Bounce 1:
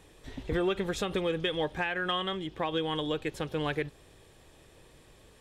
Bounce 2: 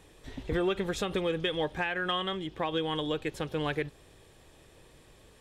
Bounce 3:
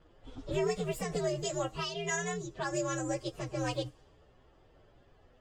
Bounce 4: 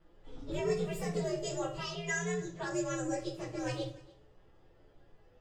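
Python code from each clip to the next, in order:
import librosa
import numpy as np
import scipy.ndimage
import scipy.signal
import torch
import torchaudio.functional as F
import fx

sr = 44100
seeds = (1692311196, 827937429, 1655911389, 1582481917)

y1 = x
y2 = fx.partial_stretch(y1, sr, pct=129)
y2 = fx.spec_box(y2, sr, start_s=1.85, length_s=0.22, low_hz=690.0, high_hz=2900.0, gain_db=-10)
y2 = fx.env_lowpass(y2, sr, base_hz=2500.0, full_db=-30.5)
y3 = y2 + 10.0 ** (-22.5 / 20.0) * np.pad(y2, (int(293 * sr / 1000.0), 0))[:len(y2)]
y3 = fx.room_shoebox(y3, sr, seeds[0], volume_m3=39.0, walls='mixed', distance_m=0.7)
y3 = y3 * 10.0 ** (-6.5 / 20.0)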